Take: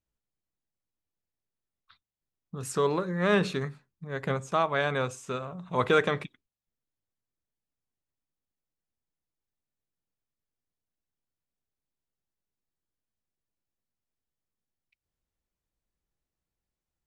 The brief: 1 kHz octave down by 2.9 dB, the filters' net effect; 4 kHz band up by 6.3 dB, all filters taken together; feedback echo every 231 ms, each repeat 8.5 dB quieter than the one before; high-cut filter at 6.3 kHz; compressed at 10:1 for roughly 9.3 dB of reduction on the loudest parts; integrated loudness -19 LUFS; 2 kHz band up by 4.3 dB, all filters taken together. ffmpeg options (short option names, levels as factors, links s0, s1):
-af "lowpass=6300,equalizer=f=1000:t=o:g=-7,equalizer=f=2000:t=o:g=7,equalizer=f=4000:t=o:g=6,acompressor=threshold=0.0447:ratio=10,aecho=1:1:231|462|693|924:0.376|0.143|0.0543|0.0206,volume=5.01"